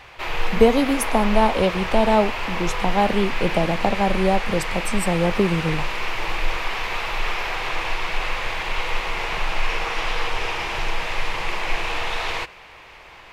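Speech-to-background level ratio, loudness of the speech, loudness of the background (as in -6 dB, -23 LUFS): 5.0 dB, -21.5 LUFS, -26.5 LUFS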